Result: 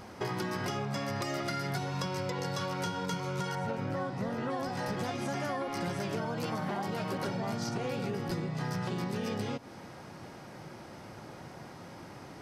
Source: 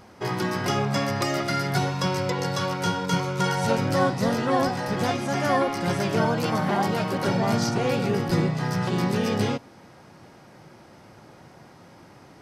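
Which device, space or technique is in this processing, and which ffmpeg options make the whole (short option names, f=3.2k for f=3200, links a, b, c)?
serial compression, peaks first: -filter_complex "[0:a]acompressor=threshold=-29dB:ratio=6,acompressor=threshold=-36dB:ratio=2,asettb=1/sr,asplit=3[a][b][c];[a]atrim=end=3.554[d];[b]atrim=start=3.55:end=4.5,asetpts=PTS-STARTPTS,afade=t=in:d=0.004:c=qsin,afade=t=out:st=0.946:d=0.004:c=qsin,acrossover=split=2700[e][f];[f]acompressor=threshold=-59dB:ratio=4:attack=1:release=60[g];[e][g]amix=inputs=2:normalize=0[h];[c]atrim=start=4.496[i];[d][h]acrossfade=d=0.004:c1=hsin:c2=qsin[j];[j][i]acrossfade=d=0.004:c1=qsin:c2=hsin,volume=2dB"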